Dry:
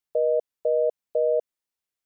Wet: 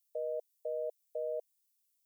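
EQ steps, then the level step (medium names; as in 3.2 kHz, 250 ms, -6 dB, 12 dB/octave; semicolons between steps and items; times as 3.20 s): differentiator; static phaser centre 510 Hz, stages 4; +8.0 dB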